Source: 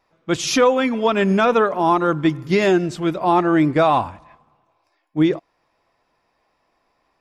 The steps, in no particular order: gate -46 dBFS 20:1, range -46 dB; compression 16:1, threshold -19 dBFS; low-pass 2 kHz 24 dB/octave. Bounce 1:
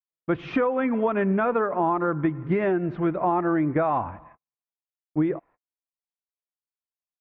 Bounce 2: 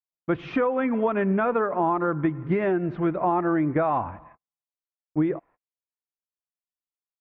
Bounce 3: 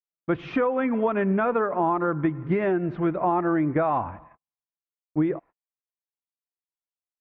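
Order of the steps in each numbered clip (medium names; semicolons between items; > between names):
gate > low-pass > compression; gate > compression > low-pass; compression > gate > low-pass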